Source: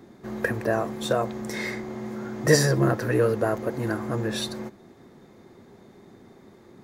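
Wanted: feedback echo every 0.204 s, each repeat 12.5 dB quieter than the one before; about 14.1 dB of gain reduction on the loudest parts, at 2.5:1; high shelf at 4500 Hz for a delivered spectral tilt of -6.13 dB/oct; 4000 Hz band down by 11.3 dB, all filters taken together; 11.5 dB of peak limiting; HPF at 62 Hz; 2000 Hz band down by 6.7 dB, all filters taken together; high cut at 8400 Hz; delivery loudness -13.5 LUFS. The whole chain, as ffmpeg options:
-af "highpass=62,lowpass=8.4k,equalizer=f=2k:t=o:g=-5.5,equalizer=f=4k:t=o:g=-7.5,highshelf=f=4.5k:g=-8.5,acompressor=threshold=-35dB:ratio=2.5,alimiter=level_in=6.5dB:limit=-24dB:level=0:latency=1,volume=-6.5dB,aecho=1:1:204|408|612:0.237|0.0569|0.0137,volume=25.5dB"

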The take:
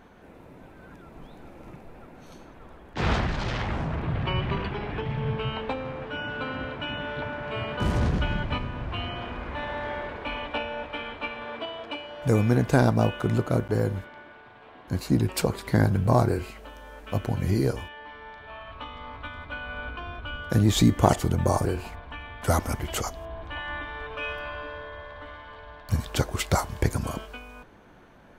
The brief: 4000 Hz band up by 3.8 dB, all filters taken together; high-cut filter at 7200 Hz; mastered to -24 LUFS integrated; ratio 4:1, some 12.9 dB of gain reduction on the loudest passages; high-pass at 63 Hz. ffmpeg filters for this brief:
-af "highpass=63,lowpass=7.2k,equalizer=f=4k:t=o:g=5.5,acompressor=threshold=-29dB:ratio=4,volume=10.5dB"

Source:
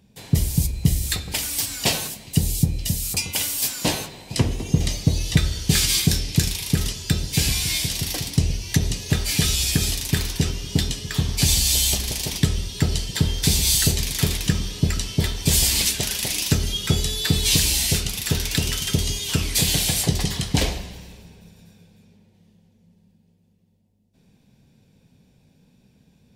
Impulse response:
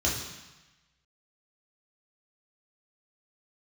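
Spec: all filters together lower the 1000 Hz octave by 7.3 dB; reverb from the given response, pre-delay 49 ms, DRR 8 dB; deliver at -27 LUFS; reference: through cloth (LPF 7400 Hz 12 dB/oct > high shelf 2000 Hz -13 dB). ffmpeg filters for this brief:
-filter_complex "[0:a]equalizer=f=1k:t=o:g=-7,asplit=2[a][b];[1:a]atrim=start_sample=2205,adelay=49[c];[b][c]afir=irnorm=-1:irlink=0,volume=-18dB[d];[a][d]amix=inputs=2:normalize=0,lowpass=7.4k,highshelf=f=2k:g=-13,volume=-4.5dB"

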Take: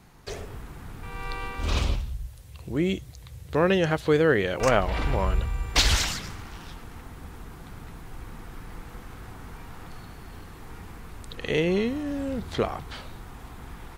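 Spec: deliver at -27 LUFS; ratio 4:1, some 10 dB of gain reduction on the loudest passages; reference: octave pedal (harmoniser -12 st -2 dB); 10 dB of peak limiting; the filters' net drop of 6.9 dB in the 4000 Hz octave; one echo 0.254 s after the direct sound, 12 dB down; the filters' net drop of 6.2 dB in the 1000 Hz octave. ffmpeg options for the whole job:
-filter_complex "[0:a]equalizer=f=1k:t=o:g=-8,equalizer=f=4k:t=o:g=-8.5,acompressor=threshold=-31dB:ratio=4,alimiter=level_in=3dB:limit=-24dB:level=0:latency=1,volume=-3dB,aecho=1:1:254:0.251,asplit=2[a][b];[b]asetrate=22050,aresample=44100,atempo=2,volume=-2dB[c];[a][c]amix=inputs=2:normalize=0,volume=11dB"

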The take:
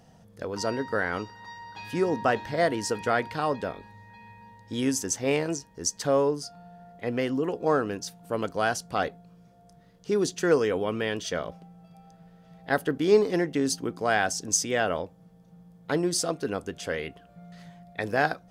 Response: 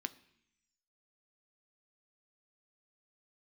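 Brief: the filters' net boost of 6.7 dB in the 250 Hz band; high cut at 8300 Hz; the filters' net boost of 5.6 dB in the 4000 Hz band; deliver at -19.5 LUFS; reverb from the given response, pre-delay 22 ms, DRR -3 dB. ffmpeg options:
-filter_complex "[0:a]lowpass=8.3k,equalizer=f=250:t=o:g=8.5,equalizer=f=4k:t=o:g=8,asplit=2[a][b];[1:a]atrim=start_sample=2205,adelay=22[c];[b][c]afir=irnorm=-1:irlink=0,volume=4dB[d];[a][d]amix=inputs=2:normalize=0,volume=1dB"

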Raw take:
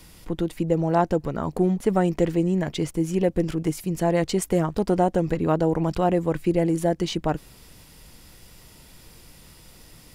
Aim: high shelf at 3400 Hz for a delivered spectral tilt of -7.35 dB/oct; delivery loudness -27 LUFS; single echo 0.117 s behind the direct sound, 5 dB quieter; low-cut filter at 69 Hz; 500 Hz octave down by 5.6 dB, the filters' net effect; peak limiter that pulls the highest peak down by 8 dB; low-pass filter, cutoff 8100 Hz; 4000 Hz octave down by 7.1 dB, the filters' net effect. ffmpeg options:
-af "highpass=69,lowpass=8.1k,equalizer=f=500:t=o:g=-7.5,highshelf=f=3.4k:g=-6,equalizer=f=4k:t=o:g=-5,alimiter=limit=-20dB:level=0:latency=1,aecho=1:1:117:0.562,volume=2dB"

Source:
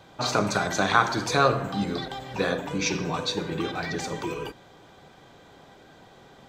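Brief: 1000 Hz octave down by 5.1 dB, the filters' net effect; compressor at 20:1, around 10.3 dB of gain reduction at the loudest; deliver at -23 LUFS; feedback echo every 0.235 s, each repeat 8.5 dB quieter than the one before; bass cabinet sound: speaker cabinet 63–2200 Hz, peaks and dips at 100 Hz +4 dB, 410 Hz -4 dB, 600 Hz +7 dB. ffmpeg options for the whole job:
-af "equalizer=f=1k:t=o:g=-8.5,acompressor=threshold=-28dB:ratio=20,highpass=f=63:w=0.5412,highpass=f=63:w=1.3066,equalizer=f=100:t=q:w=4:g=4,equalizer=f=410:t=q:w=4:g=-4,equalizer=f=600:t=q:w=4:g=7,lowpass=f=2.2k:w=0.5412,lowpass=f=2.2k:w=1.3066,aecho=1:1:235|470|705|940:0.376|0.143|0.0543|0.0206,volume=11dB"

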